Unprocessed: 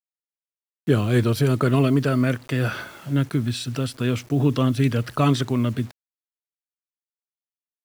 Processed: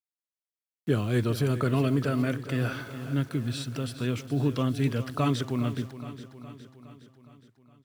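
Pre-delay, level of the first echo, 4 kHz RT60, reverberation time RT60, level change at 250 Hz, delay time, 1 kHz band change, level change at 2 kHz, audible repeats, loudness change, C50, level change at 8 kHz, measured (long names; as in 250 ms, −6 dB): no reverb audible, −13.0 dB, no reverb audible, no reverb audible, −6.0 dB, 414 ms, −6.0 dB, −6.0 dB, 5, −6.5 dB, no reverb audible, −6.0 dB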